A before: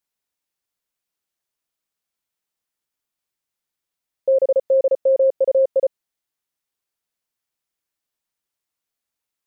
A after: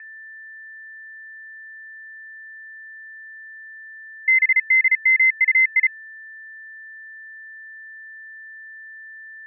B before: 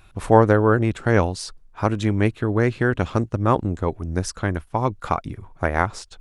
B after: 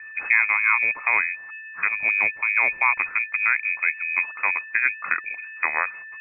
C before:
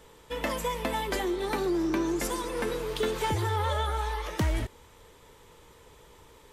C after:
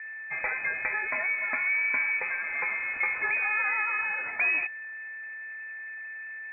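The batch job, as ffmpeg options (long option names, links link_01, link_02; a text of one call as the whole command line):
ffmpeg -i in.wav -af "adynamicequalizer=threshold=0.0112:dfrequency=1600:dqfactor=4.1:tfrequency=1600:tqfactor=4.1:attack=5:release=100:ratio=0.375:range=2:mode=boostabove:tftype=bell,alimiter=limit=-8dB:level=0:latency=1:release=387,aeval=exprs='val(0)+0.0141*sin(2*PI*830*n/s)':channel_layout=same,lowpass=frequency=2200:width_type=q:width=0.5098,lowpass=frequency=2200:width_type=q:width=0.6013,lowpass=frequency=2200:width_type=q:width=0.9,lowpass=frequency=2200:width_type=q:width=2.563,afreqshift=-2600" out.wav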